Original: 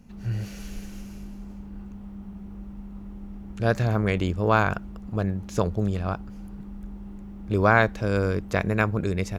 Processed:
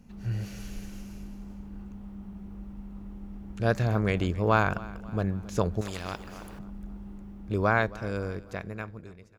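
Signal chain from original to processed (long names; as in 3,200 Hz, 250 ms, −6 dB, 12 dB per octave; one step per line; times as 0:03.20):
fade-out on the ending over 2.38 s
repeating echo 271 ms, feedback 47%, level −20 dB
0:05.81–0:06.59: every bin compressed towards the loudest bin 2 to 1
level −2.5 dB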